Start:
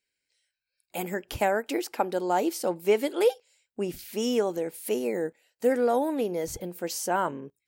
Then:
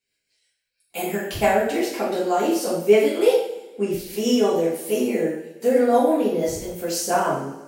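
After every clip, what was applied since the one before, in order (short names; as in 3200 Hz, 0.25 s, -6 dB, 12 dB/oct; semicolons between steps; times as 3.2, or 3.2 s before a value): rotary speaker horn 6 Hz; two-slope reverb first 0.62 s, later 1.9 s, from -19 dB, DRR -8.5 dB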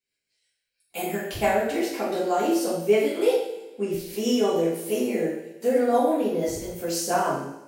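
AGC gain up to 4 dB; resonator 56 Hz, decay 1 s, harmonics all, mix 60%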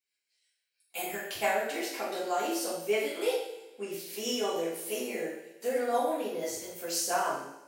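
HPF 980 Hz 6 dB/oct; gain -1.5 dB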